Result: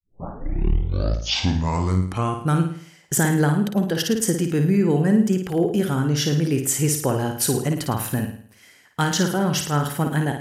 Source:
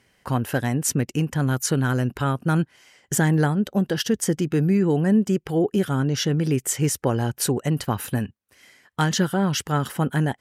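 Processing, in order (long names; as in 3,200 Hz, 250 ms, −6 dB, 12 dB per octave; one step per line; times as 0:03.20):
turntable start at the beginning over 2.64 s
high-shelf EQ 9,000 Hz +5.5 dB
on a send: flutter between parallel walls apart 9.3 metres, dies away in 0.53 s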